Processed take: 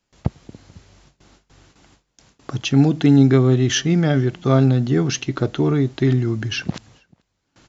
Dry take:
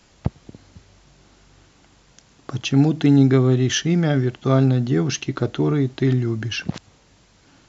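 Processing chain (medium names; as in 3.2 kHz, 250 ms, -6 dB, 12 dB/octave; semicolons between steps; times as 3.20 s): gate with hold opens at -42 dBFS; echo from a far wall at 75 m, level -29 dB; trim +1.5 dB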